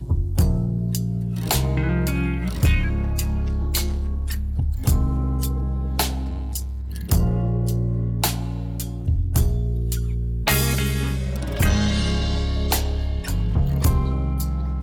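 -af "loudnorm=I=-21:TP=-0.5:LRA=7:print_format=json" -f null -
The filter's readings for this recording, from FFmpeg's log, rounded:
"input_i" : "-23.3",
"input_tp" : "-8.0",
"input_lra" : "2.0",
"input_thresh" : "-33.3",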